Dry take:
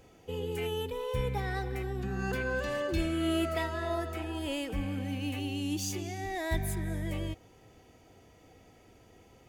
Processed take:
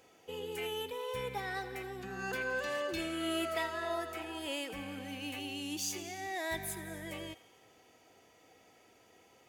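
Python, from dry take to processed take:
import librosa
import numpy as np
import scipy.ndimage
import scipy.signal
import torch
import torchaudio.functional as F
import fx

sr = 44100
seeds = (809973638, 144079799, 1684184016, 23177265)

p1 = fx.highpass(x, sr, hz=620.0, slope=6)
y = p1 + fx.echo_wet_highpass(p1, sr, ms=86, feedback_pct=64, hz=1500.0, wet_db=-17, dry=0)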